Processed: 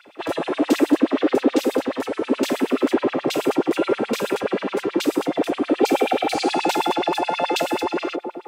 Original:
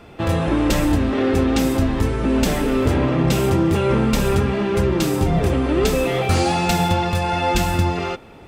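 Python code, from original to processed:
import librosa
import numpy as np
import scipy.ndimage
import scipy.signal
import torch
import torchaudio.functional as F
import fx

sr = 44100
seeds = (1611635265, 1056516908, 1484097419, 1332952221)

y = fx.echo_wet_bandpass(x, sr, ms=172, feedback_pct=59, hz=430.0, wet_db=-4.0)
y = fx.spec_repair(y, sr, seeds[0], start_s=5.85, length_s=0.53, low_hz=670.0, high_hz=3900.0, source='after')
y = fx.filter_lfo_highpass(y, sr, shape='sine', hz=9.4, low_hz=270.0, high_hz=4100.0, q=4.1)
y = F.gain(torch.from_numpy(y), -6.0).numpy()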